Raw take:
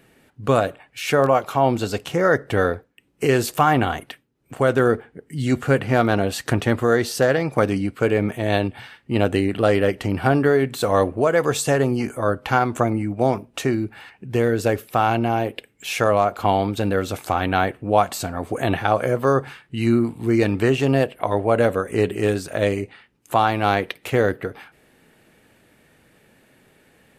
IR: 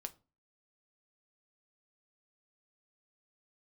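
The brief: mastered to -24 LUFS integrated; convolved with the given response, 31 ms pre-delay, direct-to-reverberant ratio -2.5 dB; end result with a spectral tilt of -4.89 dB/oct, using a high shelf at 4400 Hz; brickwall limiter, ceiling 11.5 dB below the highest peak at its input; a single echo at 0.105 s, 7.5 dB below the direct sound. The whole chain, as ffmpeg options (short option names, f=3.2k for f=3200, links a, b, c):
-filter_complex "[0:a]highshelf=f=4.4k:g=5.5,alimiter=limit=-14dB:level=0:latency=1,aecho=1:1:105:0.422,asplit=2[a][b];[1:a]atrim=start_sample=2205,adelay=31[c];[b][c]afir=irnorm=-1:irlink=0,volume=6dB[d];[a][d]amix=inputs=2:normalize=0,volume=-3dB"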